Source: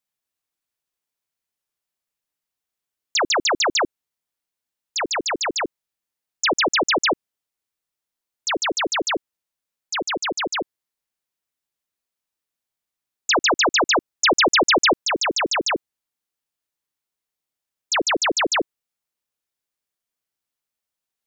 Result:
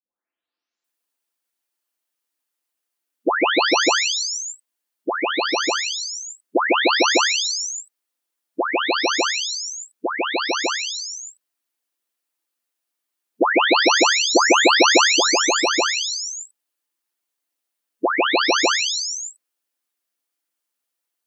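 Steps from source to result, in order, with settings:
every frequency bin delayed by itself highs late, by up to 840 ms
linear-phase brick-wall high-pass 200 Hz
level +5.5 dB

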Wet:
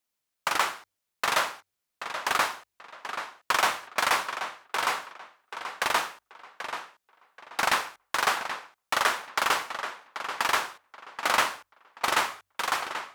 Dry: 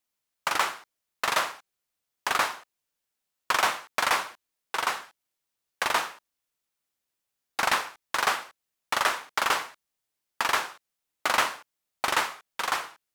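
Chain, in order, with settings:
hum removal 47.73 Hz, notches 2
tape delay 782 ms, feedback 26%, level −8 dB, low-pass 4,200 Hz

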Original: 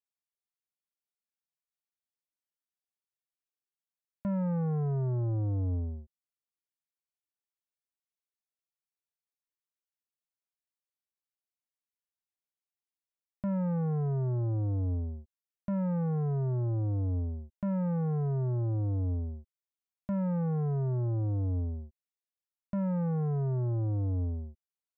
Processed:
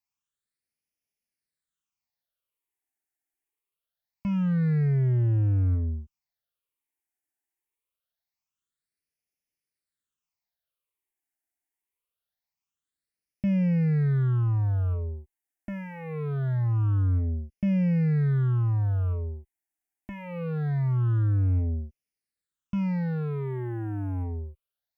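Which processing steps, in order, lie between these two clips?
harmonic generator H 5 −19 dB, 7 −25 dB, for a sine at −28.5 dBFS
all-pass phaser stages 8, 0.24 Hz, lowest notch 150–1,200 Hz
level +5.5 dB

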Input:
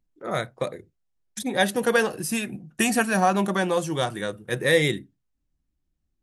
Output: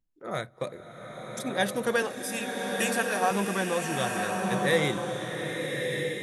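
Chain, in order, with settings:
0:02.02–0:03.31: high-pass filter 380 Hz 12 dB per octave
slow-attack reverb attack 1,240 ms, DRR 1.5 dB
level −5.5 dB

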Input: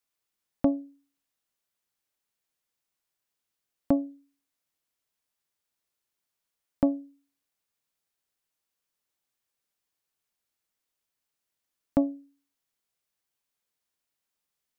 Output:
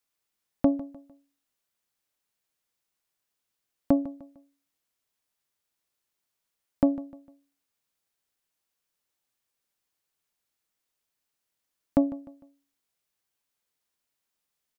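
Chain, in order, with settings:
repeating echo 151 ms, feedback 37%, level −17 dB
level +1.5 dB

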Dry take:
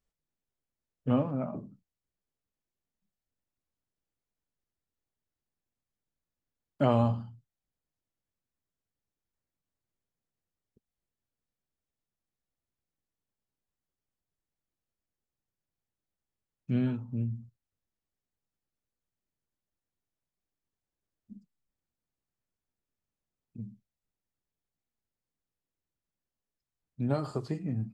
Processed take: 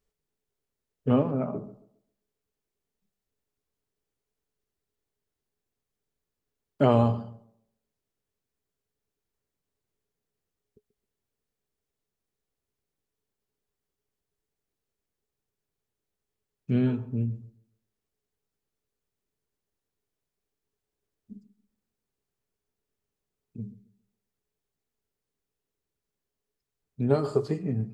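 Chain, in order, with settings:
parametric band 420 Hz +13 dB 0.2 octaves
on a send: tape delay 136 ms, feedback 33%, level −15 dB, low-pass 1,200 Hz
on the sum: level +3.5 dB

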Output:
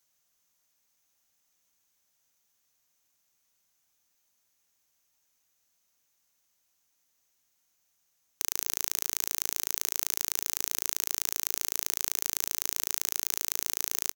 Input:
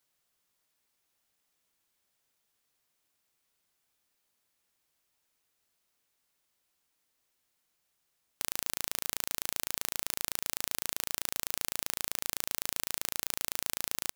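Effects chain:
thirty-one-band graphic EQ 400 Hz −5 dB, 6,300 Hz +11 dB, 16,000 Hz +9 dB
single-tap delay 165 ms −20 dB

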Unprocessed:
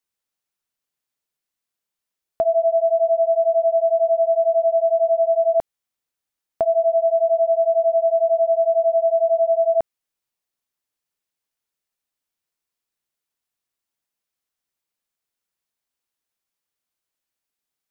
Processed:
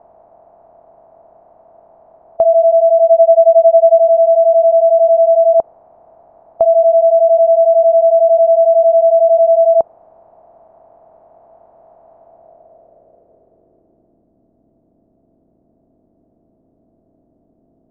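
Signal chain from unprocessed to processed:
compressor on every frequency bin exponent 0.4
0:03.01–0:03.99: transient designer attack +11 dB, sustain −10 dB
low-pass filter sweep 870 Hz → 280 Hz, 0:12.17–0:14.30
dynamic equaliser 500 Hz, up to +3 dB, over −25 dBFS, Q 2

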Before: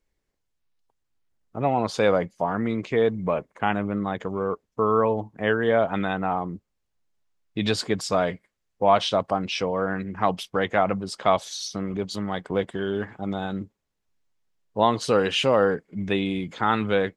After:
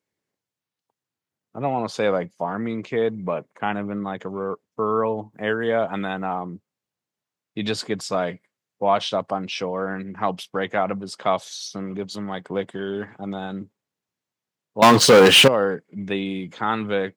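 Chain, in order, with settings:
0:05.33–0:06.37: high-shelf EQ 8,100 Hz +11.5 dB
0:14.82–0:15.48: leveller curve on the samples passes 5
high-pass filter 110 Hz 24 dB per octave
level −1 dB

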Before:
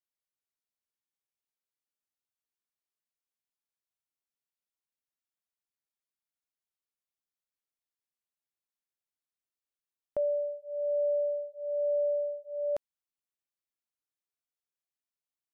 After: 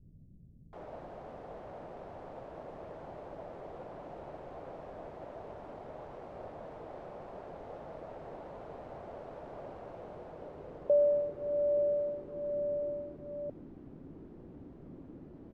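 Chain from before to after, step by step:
bit-depth reduction 6 bits, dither triangular
parametric band 160 Hz +4.5 dB 0.34 octaves
low-pass filter sweep 630 Hz → 290 Hz, 0:09.03–0:12.91
multiband delay without the direct sound lows, highs 730 ms, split 190 Hz

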